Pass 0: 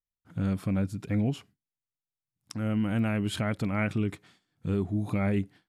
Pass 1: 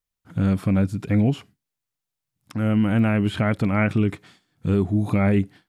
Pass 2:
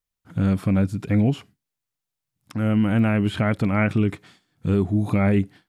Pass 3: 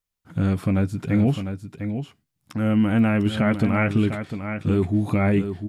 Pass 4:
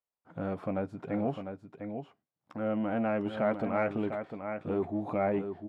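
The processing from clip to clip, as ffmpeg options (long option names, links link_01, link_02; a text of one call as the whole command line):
ffmpeg -i in.wav -filter_complex "[0:a]acrossover=split=2900[link_01][link_02];[link_02]acompressor=threshold=-51dB:ratio=4:attack=1:release=60[link_03];[link_01][link_03]amix=inputs=2:normalize=0,volume=8dB" out.wav
ffmpeg -i in.wav -af anull out.wav
ffmpeg -i in.wav -filter_complex "[0:a]asplit=2[link_01][link_02];[link_02]adelay=13,volume=-11.5dB[link_03];[link_01][link_03]amix=inputs=2:normalize=0,aecho=1:1:701:0.376" out.wav
ffmpeg -i in.wav -af "asoftclip=type=tanh:threshold=-12dB,bandpass=frequency=680:width_type=q:width=1.4:csg=0" out.wav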